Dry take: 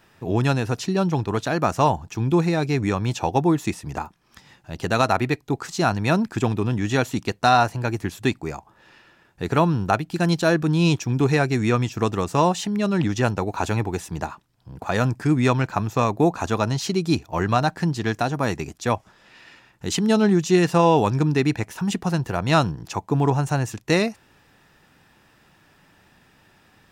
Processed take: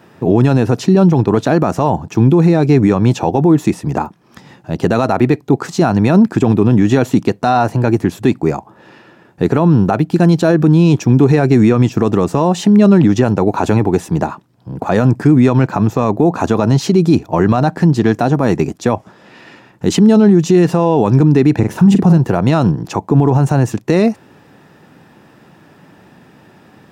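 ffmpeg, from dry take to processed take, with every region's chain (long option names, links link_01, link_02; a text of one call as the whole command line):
ffmpeg -i in.wav -filter_complex "[0:a]asettb=1/sr,asplit=3[link_01][link_02][link_03];[link_01]atrim=end=21.594[link_04];[link_02]atrim=start=21.59:end=22.18,asetpts=PTS-STARTPTS,afade=type=in:duration=0.004:curve=qsin,afade=type=out:start_time=0.586:duration=0.004:curve=qsin,lowshelf=frequency=350:gain=8,asplit=2[link_05][link_06];[link_06]adelay=41,volume=-9.5dB[link_07];[link_05][link_07]amix=inputs=2:normalize=0,atrim=end_sample=26019[link_08];[link_03]atrim=start=22.176[link_09];[link_04][link_08]acrossfade=duration=0.004:curve1=hsin:curve2=qsin[link_10];[link_10][link_09]acrossfade=duration=0.004:curve1=qsin:curve2=hsin,highpass=150,tiltshelf=frequency=970:gain=7,alimiter=level_in=12dB:limit=-1dB:release=50:level=0:latency=1,volume=-1dB" out.wav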